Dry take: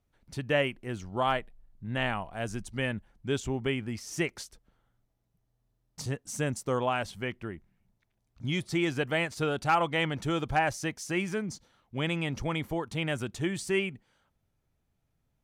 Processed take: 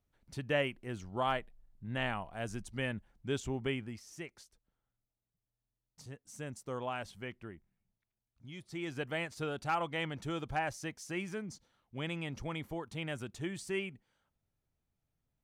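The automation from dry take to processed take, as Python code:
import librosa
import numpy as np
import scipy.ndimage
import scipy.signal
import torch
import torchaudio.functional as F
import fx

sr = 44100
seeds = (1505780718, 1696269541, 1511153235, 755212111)

y = fx.gain(x, sr, db=fx.line((3.75, -5.0), (4.2, -15.0), (6.11, -15.0), (6.95, -9.0), (7.49, -9.0), (8.51, -18.0), (9.01, -8.0)))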